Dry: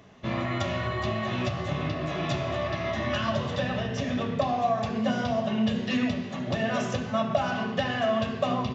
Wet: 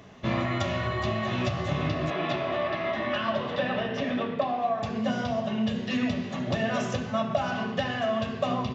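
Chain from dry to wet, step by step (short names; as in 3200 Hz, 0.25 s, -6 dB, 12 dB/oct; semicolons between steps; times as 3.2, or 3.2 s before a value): 2.1–4.83 three-band isolator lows -16 dB, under 190 Hz, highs -21 dB, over 4200 Hz; vocal rider 0.5 s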